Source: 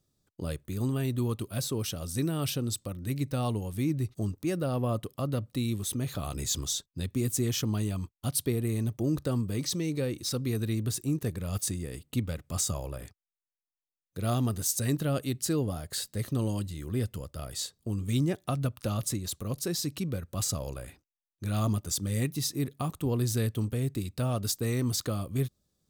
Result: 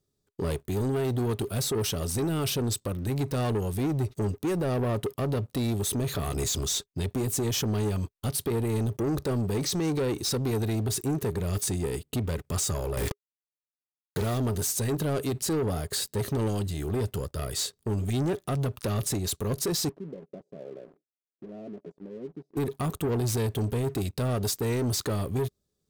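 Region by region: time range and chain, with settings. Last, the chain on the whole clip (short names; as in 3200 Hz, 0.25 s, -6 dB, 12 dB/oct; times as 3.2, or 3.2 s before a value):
12.97–14.38 companded quantiser 4-bit + fast leveller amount 100%
19.89–22.57 low shelf 230 Hz -8.5 dB + compressor 3:1, threshold -46 dBFS + elliptic band-pass 160–660 Hz
whole clip: bell 410 Hz +12 dB 0.21 oct; limiter -22.5 dBFS; sample leveller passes 2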